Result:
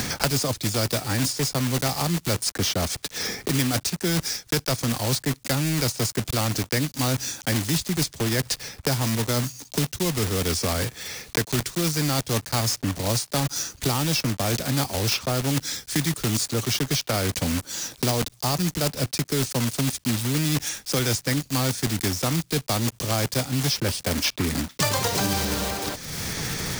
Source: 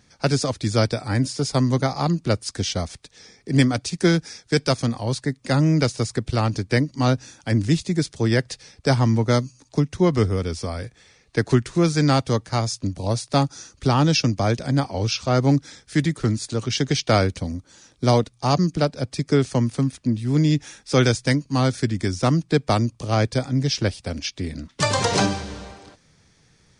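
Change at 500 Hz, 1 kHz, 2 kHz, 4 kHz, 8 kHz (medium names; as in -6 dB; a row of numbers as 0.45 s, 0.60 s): -5.5 dB, -4.0 dB, -0.5 dB, +2.5 dB, +6.5 dB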